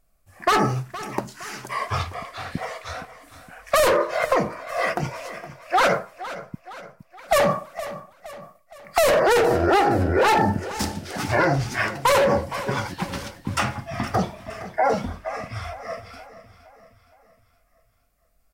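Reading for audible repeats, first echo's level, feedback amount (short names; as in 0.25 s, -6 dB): 4, -15.0 dB, 50%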